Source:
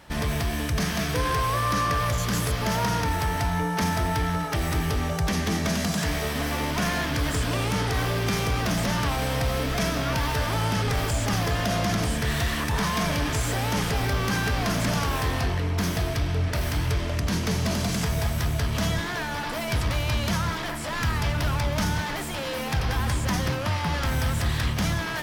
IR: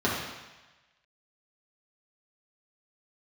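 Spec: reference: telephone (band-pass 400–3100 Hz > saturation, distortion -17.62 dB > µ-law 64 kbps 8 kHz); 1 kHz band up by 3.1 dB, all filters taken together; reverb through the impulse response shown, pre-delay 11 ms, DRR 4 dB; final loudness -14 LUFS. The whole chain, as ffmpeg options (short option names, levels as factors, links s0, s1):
-filter_complex "[0:a]equalizer=f=1000:t=o:g=4,asplit=2[s0][s1];[1:a]atrim=start_sample=2205,adelay=11[s2];[s1][s2]afir=irnorm=-1:irlink=0,volume=0.133[s3];[s0][s3]amix=inputs=2:normalize=0,highpass=400,lowpass=3100,asoftclip=threshold=0.0944,volume=5.31" -ar 8000 -c:a pcm_mulaw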